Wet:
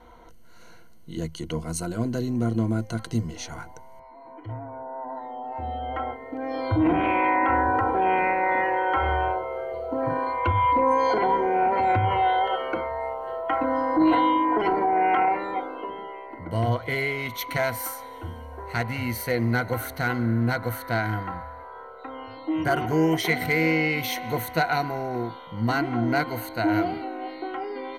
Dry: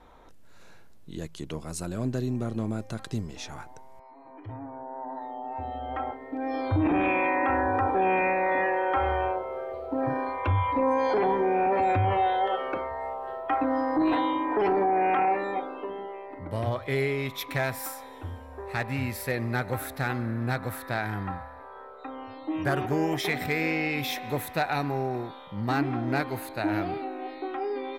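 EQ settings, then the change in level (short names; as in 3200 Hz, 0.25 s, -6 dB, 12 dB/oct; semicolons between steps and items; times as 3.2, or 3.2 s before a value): ripple EQ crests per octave 1.9, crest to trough 12 dB; +2.0 dB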